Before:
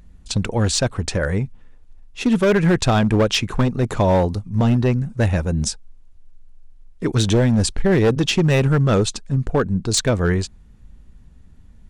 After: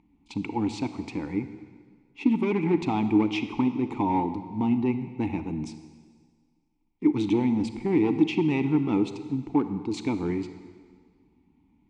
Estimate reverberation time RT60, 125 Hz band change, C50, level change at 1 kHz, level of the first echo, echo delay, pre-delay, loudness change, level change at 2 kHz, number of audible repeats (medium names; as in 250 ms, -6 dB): 1.7 s, -15.0 dB, 10.5 dB, -5.5 dB, no echo, no echo, 30 ms, -7.5 dB, -12.0 dB, no echo